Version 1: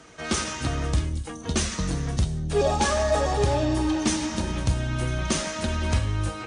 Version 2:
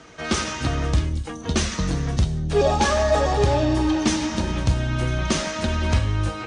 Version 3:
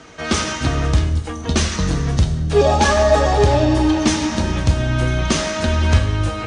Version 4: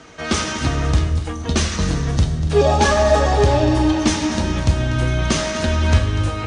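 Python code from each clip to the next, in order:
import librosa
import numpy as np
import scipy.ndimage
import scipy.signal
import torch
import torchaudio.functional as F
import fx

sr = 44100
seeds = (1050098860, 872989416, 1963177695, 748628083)

y1 = scipy.signal.sosfilt(scipy.signal.butter(2, 6400.0, 'lowpass', fs=sr, output='sos'), x)
y1 = y1 * 10.0 ** (3.5 / 20.0)
y2 = fx.rev_fdn(y1, sr, rt60_s=1.8, lf_ratio=0.75, hf_ratio=0.75, size_ms=70.0, drr_db=9.0)
y2 = y2 * 10.0 ** (4.0 / 20.0)
y3 = y2 + 10.0 ** (-12.5 / 20.0) * np.pad(y2, (int(243 * sr / 1000.0), 0))[:len(y2)]
y3 = y3 * 10.0 ** (-1.0 / 20.0)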